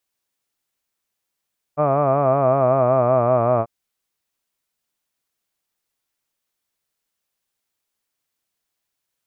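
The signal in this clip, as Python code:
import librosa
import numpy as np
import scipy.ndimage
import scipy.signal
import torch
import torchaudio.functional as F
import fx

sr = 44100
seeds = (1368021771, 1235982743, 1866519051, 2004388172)

y = fx.vowel(sr, seeds[0], length_s=1.89, word='hud', hz=144.0, glide_st=-3.5, vibrato_hz=5.3, vibrato_st=0.9)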